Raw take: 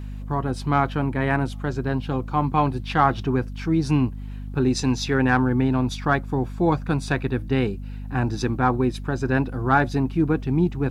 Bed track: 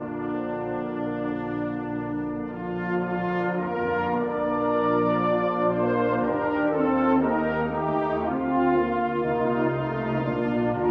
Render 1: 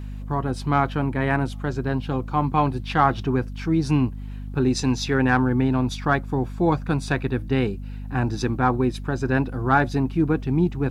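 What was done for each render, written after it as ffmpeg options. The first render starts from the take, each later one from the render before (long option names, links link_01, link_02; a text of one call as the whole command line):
ffmpeg -i in.wav -af anull out.wav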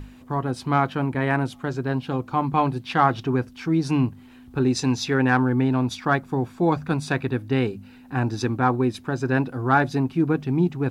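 ffmpeg -i in.wav -af "bandreject=frequency=50:width_type=h:width=6,bandreject=frequency=100:width_type=h:width=6,bandreject=frequency=150:width_type=h:width=6,bandreject=frequency=200:width_type=h:width=6" out.wav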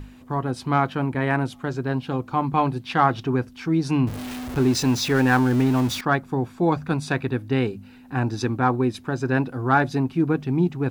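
ffmpeg -i in.wav -filter_complex "[0:a]asettb=1/sr,asplit=3[link_01][link_02][link_03];[link_01]atrim=end=4.074[link_04];[link_02]atrim=start=4.07:end=6.01,asetpts=PTS-STARTPTS,afade=type=in:duration=0.004:curve=qsin,afade=type=out:start_time=1.936:duration=0.004:curve=qsin,aeval=exprs='val(0)+0.5*0.0422*sgn(val(0))':channel_layout=same[link_05];[link_03]atrim=start=6.006[link_06];[link_04][link_05]acrossfade=duration=0.004:curve1=hsin:curve2=qsin[link_07];[link_07][link_06]acrossfade=duration=0.004:curve1=qsin:curve2=hsin" out.wav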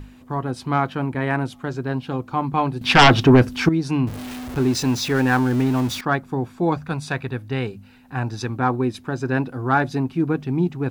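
ffmpeg -i in.wav -filter_complex "[0:a]asettb=1/sr,asplit=3[link_01][link_02][link_03];[link_01]atrim=end=2.814[link_04];[link_02]atrim=start=2.81:end=3.69,asetpts=PTS-STARTPTS,afade=type=in:duration=0.004:curve=qsin,afade=type=out:start_time=0.876:duration=0.004:curve=qsin,aeval=exprs='0.501*sin(PI/2*3.16*val(0)/0.501)':channel_layout=same[link_05];[link_03]atrim=start=3.686[link_06];[link_04][link_05]acrossfade=duration=0.004:curve1=hsin:curve2=qsin[link_07];[link_07][link_06]acrossfade=duration=0.004:curve1=qsin:curve2=hsin,asettb=1/sr,asplit=3[link_08][link_09][link_10];[link_08]atrim=end=6.784[link_11];[link_09]atrim=start=6.78:end=8.56,asetpts=PTS-STARTPTS,afade=type=in:duration=0.004:curve=qsin,afade=type=out:start_time=1.776:duration=0.004:curve=qsin,equalizer=frequency=300:width=1.5:gain=-6.5[link_12];[link_10]atrim=start=8.556[link_13];[link_11][link_12]acrossfade=duration=0.004:curve1=hsin:curve2=qsin[link_14];[link_14][link_13]acrossfade=duration=0.004:curve1=qsin:curve2=hsin" out.wav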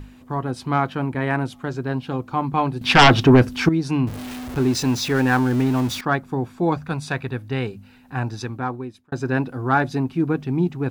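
ffmpeg -i in.wav -filter_complex "[0:a]asplit=2[link_01][link_02];[link_01]atrim=end=9.12,asetpts=PTS-STARTPTS,afade=type=out:start_time=8.22:duration=0.9[link_03];[link_02]atrim=start=9.12,asetpts=PTS-STARTPTS,afade=type=in:duration=0.004:curve=hsin[link_04];[link_03][link_04]concat=n=2:v=0:a=1" out.wav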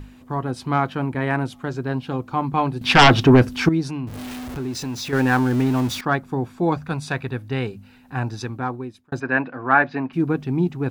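ffmpeg -i in.wav -filter_complex "[0:a]asettb=1/sr,asplit=3[link_01][link_02][link_03];[link_01]atrim=end=3.894[link_04];[link_02]atrim=start=3.89:end=5.13,asetpts=PTS-STARTPTS,afade=type=in:duration=0.004:curve=qsin,afade=type=out:start_time=1.236:duration=0.004:curve=qsin,acompressor=threshold=-31dB:ratio=2:attack=3.2:release=140:knee=1:detection=peak[link_05];[link_03]atrim=start=5.126[link_06];[link_04][link_05]acrossfade=duration=0.004:curve1=hsin:curve2=qsin[link_07];[link_07][link_06]acrossfade=duration=0.004:curve1=qsin:curve2=hsin,asplit=3[link_08][link_09][link_10];[link_08]afade=type=out:start_time=9.19:duration=0.02[link_11];[link_09]highpass=220,equalizer=frequency=380:width_type=q:width=4:gain=-5,equalizer=frequency=620:width_type=q:width=4:gain=4,equalizer=frequency=1100:width_type=q:width=4:gain=4,equalizer=frequency=1700:width_type=q:width=4:gain=8,equalizer=frequency=2400:width_type=q:width=4:gain=6,equalizer=frequency=3500:width_type=q:width=4:gain=-6,lowpass=frequency=3800:width=0.5412,lowpass=frequency=3800:width=1.3066,afade=type=in:start_time=9.19:duration=0.02,afade=type=out:start_time=10.12:duration=0.02[link_12];[link_10]afade=type=in:start_time=10.12:duration=0.02[link_13];[link_11][link_12][link_13]amix=inputs=3:normalize=0" out.wav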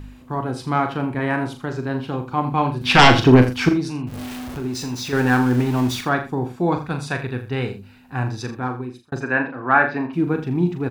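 ffmpeg -i in.wav -filter_complex "[0:a]asplit=2[link_01][link_02];[link_02]adelay=40,volume=-7.5dB[link_03];[link_01][link_03]amix=inputs=2:normalize=0,aecho=1:1:82:0.224" out.wav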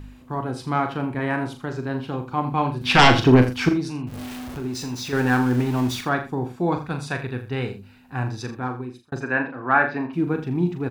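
ffmpeg -i in.wav -af "volume=-2.5dB" out.wav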